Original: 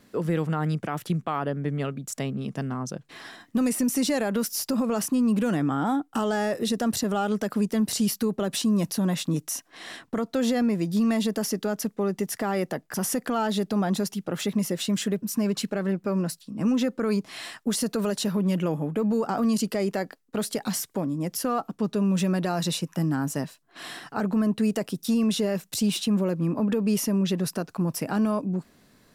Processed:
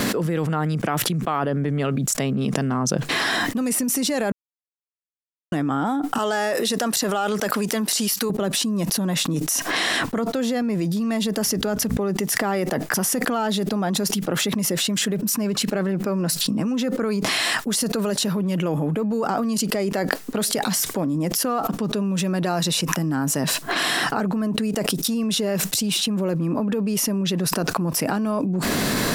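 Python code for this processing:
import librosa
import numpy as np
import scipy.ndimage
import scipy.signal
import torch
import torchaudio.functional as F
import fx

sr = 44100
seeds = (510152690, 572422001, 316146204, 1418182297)

y = fx.highpass(x, sr, hz=670.0, slope=6, at=(6.18, 8.3))
y = fx.dmg_buzz(y, sr, base_hz=60.0, harmonics=4, level_db=-53.0, tilt_db=-1, odd_only=False, at=(11.38, 12.02), fade=0.02)
y = fx.edit(y, sr, fx.silence(start_s=4.32, length_s=1.2), tone=tone)
y = fx.low_shelf(y, sr, hz=95.0, db=-8.0)
y = fx.env_flatten(y, sr, amount_pct=100)
y = y * librosa.db_to_amplitude(-1.0)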